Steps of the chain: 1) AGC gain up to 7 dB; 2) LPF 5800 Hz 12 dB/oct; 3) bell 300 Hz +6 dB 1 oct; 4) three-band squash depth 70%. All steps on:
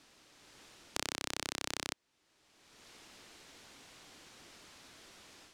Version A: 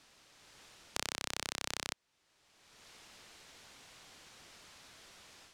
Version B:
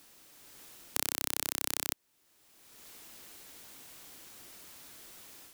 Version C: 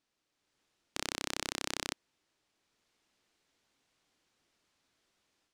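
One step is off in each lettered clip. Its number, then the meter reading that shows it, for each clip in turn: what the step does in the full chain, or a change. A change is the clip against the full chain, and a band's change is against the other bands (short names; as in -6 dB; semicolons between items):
3, 250 Hz band -4.5 dB; 2, 8 kHz band +6.5 dB; 4, momentary loudness spread change -11 LU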